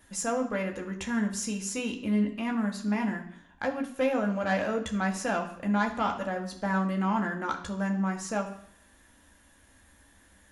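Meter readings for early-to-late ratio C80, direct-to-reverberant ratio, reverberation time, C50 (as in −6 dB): 13.0 dB, 1.5 dB, 0.60 s, 10.0 dB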